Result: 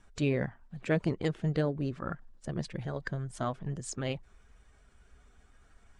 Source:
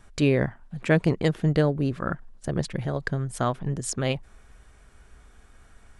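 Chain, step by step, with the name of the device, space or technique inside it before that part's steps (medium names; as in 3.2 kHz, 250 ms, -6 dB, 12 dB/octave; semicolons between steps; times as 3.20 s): clip after many re-uploads (low-pass 8.9 kHz 24 dB/octave; coarse spectral quantiser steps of 15 dB); trim -7.5 dB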